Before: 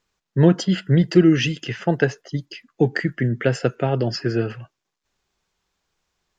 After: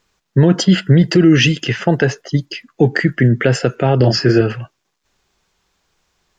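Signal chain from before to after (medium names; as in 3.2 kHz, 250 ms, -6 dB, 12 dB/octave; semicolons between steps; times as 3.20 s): 3.97–4.41 s: doubling 32 ms -4 dB; loudness maximiser +10.5 dB; trim -1 dB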